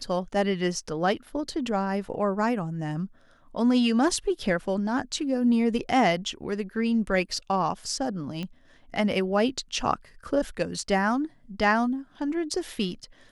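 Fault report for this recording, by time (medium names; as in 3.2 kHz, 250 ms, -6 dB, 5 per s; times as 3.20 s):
8.43 s: pop -21 dBFS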